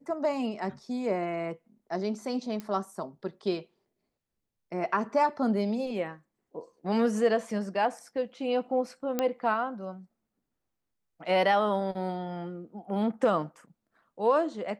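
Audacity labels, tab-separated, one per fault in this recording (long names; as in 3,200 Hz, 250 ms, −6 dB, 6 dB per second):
2.600000	2.600000	click −23 dBFS
9.190000	9.190000	click −13 dBFS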